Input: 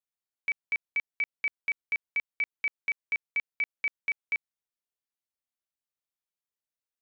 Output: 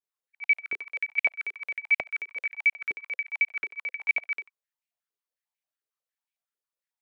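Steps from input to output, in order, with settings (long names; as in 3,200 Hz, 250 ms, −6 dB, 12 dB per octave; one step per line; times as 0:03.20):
every overlapping window played backwards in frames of 184 ms
high-pass on a step sequencer 11 Hz 400–2,300 Hz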